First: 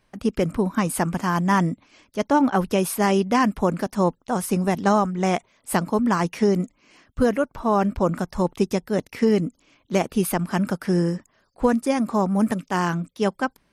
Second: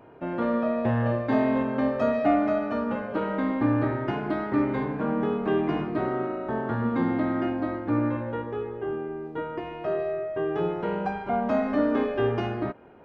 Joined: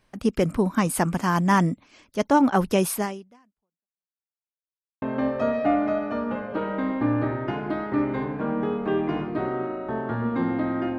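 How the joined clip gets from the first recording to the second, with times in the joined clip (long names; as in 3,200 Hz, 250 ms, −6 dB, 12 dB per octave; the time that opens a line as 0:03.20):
first
0:02.96–0:04.09: fade out exponential
0:04.09–0:05.02: silence
0:05.02: continue with second from 0:01.62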